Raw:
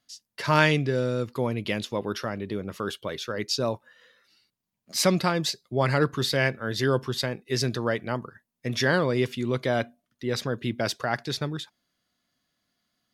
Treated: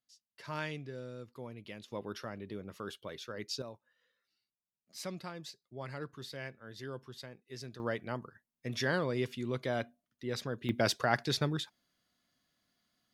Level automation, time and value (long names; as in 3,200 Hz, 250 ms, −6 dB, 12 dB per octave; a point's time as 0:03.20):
−18.5 dB
from 0:01.88 −11.5 dB
from 0:03.62 −19.5 dB
from 0:07.80 −9 dB
from 0:10.69 −2 dB